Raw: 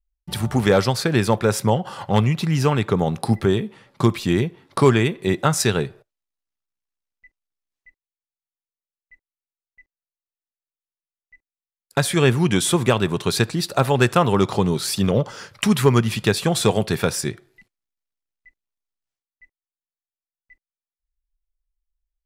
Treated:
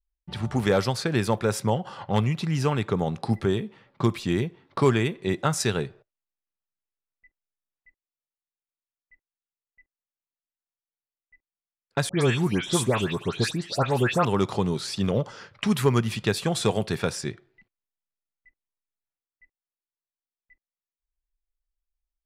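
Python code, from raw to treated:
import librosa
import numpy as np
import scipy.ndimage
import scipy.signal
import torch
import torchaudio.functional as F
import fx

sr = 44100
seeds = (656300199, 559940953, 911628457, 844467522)

y = fx.env_lowpass(x, sr, base_hz=2400.0, full_db=-14.5)
y = fx.dispersion(y, sr, late='highs', ms=132.0, hz=2500.0, at=(12.09, 14.25))
y = F.gain(torch.from_numpy(y), -5.5).numpy()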